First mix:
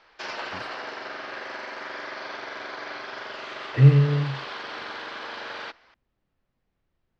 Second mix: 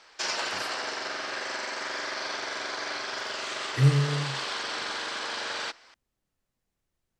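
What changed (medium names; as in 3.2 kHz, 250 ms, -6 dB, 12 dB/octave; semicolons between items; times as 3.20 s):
speech -6.5 dB; master: remove distance through air 240 m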